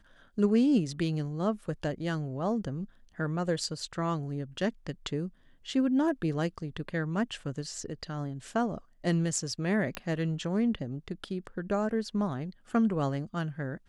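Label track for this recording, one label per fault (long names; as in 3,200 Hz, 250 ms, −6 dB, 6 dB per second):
9.950000	9.950000	click −18 dBFS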